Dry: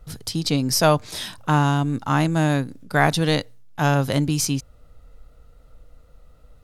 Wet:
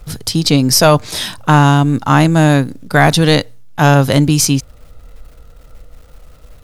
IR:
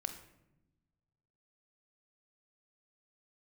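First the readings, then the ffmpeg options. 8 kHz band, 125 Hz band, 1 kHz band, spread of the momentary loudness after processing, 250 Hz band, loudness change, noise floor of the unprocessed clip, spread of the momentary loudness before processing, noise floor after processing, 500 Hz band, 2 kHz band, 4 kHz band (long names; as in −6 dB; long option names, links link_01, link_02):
+10.0 dB, +9.5 dB, +8.5 dB, 8 LU, +9.5 dB, +9.5 dB, −51 dBFS, 9 LU, −41 dBFS, +9.0 dB, +8.5 dB, +10.0 dB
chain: -af "apsyclip=11.5dB,acrusher=bits=9:dc=4:mix=0:aa=0.000001,volume=-1.5dB"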